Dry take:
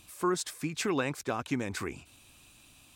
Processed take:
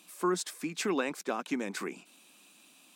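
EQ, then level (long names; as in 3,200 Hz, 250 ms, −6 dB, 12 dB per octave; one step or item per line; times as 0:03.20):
elliptic high-pass filter 180 Hz, stop band 40 dB
0.0 dB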